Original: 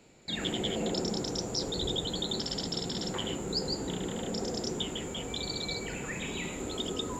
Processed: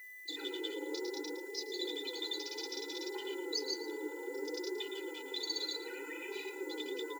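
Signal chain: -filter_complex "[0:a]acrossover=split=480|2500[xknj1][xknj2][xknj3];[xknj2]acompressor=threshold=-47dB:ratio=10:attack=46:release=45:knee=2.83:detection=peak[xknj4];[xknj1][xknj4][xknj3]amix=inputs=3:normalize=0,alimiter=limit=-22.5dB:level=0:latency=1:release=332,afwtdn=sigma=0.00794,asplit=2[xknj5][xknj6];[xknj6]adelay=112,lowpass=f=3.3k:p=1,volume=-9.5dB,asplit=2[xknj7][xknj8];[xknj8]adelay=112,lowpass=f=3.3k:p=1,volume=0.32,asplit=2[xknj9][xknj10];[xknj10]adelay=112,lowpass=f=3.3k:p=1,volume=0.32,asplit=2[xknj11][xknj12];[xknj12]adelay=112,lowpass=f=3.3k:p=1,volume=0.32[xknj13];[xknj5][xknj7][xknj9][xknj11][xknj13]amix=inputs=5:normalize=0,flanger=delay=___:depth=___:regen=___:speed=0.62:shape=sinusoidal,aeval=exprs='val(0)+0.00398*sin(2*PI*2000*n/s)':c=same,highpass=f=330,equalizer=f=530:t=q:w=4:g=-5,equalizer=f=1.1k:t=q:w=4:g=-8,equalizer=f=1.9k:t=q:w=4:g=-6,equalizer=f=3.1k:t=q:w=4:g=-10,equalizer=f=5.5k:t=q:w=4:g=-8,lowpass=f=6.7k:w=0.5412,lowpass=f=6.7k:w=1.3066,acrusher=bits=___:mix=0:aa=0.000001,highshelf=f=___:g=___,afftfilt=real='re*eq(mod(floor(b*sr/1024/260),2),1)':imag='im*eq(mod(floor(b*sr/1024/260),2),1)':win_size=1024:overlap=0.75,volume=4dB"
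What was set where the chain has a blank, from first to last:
4.8, 4.6, 13, 10, 5.3k, 10.5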